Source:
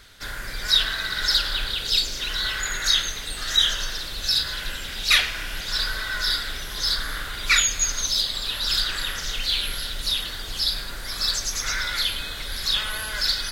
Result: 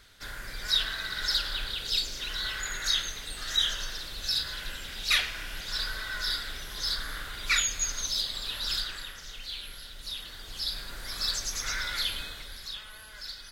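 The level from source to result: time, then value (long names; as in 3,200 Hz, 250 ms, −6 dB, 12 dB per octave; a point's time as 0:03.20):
0:08.70 −7 dB
0:09.16 −14.5 dB
0:09.93 −14.5 dB
0:11.03 −6 dB
0:12.20 −6 dB
0:12.80 −17.5 dB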